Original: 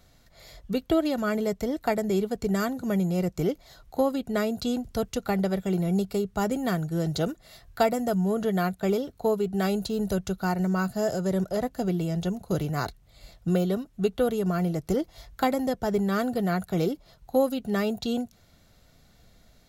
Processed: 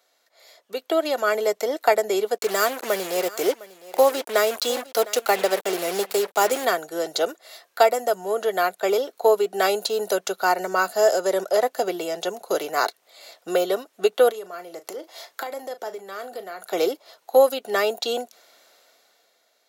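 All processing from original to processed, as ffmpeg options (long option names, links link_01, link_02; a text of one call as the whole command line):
ffmpeg -i in.wav -filter_complex "[0:a]asettb=1/sr,asplit=3[link_01][link_02][link_03];[link_01]atrim=end=2.384[link_04];[link_02]atrim=start=2.38:end=6.65,asetpts=PTS-STARTPTS,afade=type=in:duration=0.004:curve=qsin,afade=type=out:start_time=4.266:duration=0.004:curve=qsin,highshelf=frequency=7200:gain=5,acrusher=bits=5:mix=0:aa=0.5,aecho=1:1:707:0.112,atrim=end_sample=188307[link_05];[link_03]atrim=start=6.646[link_06];[link_04][link_05]acrossfade=duration=0.004:curve1=hsin:curve2=qsin[link_07];[link_07][link_06]acrossfade=duration=0.004:curve1=qsin:curve2=hsin,asettb=1/sr,asplit=3[link_08][link_09][link_10];[link_08]atrim=end=14.304[link_11];[link_09]atrim=start=14.3:end=16.73,asetpts=PTS-STARTPTS,afade=type=in:duration=0.004:curve=qsin,afade=type=out:start_time=2.426:duration=0.004:curve=qsin,acompressor=threshold=-35dB:ratio=16:attack=3.2:release=140:knee=1:detection=peak,asplit=2[link_12][link_13];[link_13]adelay=37,volume=-12.5dB[link_14];[link_12][link_14]amix=inputs=2:normalize=0,atrim=end_sample=107163[link_15];[link_10]atrim=start=16.726[link_16];[link_11][link_15]acrossfade=duration=0.004:curve1=hsin:curve2=qsin[link_17];[link_17][link_16]acrossfade=duration=0.004:curve1=qsin:curve2=hsin,highpass=frequency=430:width=0.5412,highpass=frequency=430:width=1.3066,dynaudnorm=framelen=110:gausssize=17:maxgain=13dB,volume=-2.5dB" out.wav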